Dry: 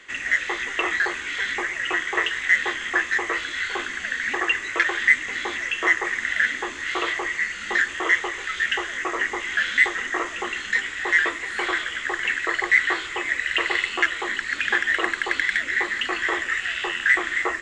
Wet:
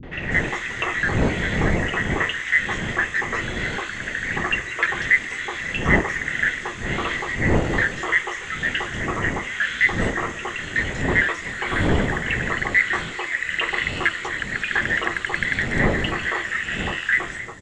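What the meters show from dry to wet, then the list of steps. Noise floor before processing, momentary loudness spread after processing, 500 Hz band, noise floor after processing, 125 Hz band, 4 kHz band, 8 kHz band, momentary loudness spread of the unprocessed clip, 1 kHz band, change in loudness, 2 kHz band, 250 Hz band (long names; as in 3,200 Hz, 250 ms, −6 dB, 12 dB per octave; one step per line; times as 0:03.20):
−34 dBFS, 7 LU, +4.5 dB, −33 dBFS, can't be measured, −1.5 dB, −1.0 dB, 7 LU, +0.5 dB, +0.5 dB, −0.5 dB, +9.0 dB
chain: fade-out on the ending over 0.59 s
wind on the microphone 330 Hz −27 dBFS
three-band delay without the direct sound lows, mids, highs 30/220 ms, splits 280/4,400 Hz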